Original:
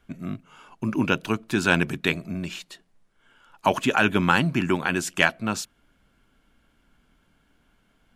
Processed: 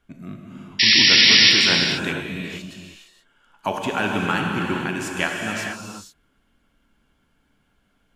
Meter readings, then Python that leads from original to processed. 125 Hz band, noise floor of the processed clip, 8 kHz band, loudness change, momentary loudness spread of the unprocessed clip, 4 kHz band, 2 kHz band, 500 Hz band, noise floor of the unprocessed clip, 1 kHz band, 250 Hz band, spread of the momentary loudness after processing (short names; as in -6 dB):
-2.0 dB, -66 dBFS, +7.0 dB, +8.0 dB, 14 LU, +17.0 dB, +4.5 dB, -1.5 dB, -66 dBFS, -1.5 dB, -1.5 dB, 21 LU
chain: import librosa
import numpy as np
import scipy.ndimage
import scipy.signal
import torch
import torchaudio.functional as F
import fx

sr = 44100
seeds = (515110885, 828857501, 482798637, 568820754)

y = fx.spec_paint(x, sr, seeds[0], shape='noise', start_s=0.79, length_s=0.72, low_hz=1700.0, high_hz=5700.0, level_db=-11.0)
y = fx.rev_gated(y, sr, seeds[1], gate_ms=500, shape='flat', drr_db=0.0)
y = y * librosa.db_to_amplitude(-4.5)